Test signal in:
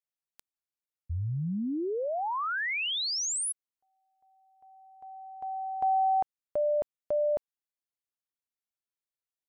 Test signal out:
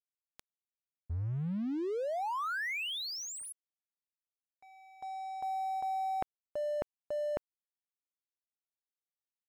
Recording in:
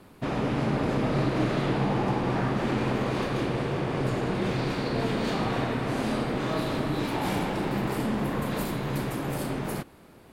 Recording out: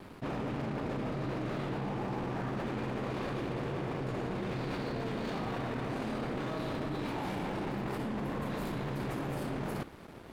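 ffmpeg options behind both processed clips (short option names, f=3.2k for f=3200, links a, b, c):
-af "areverse,acompressor=threshold=-39dB:ratio=12:attack=3.8:release=52:knee=6:detection=peak,areverse,aemphasis=mode=reproduction:type=cd,acontrast=69,aeval=exprs='sgn(val(0))*max(abs(val(0))-0.00282,0)':c=same"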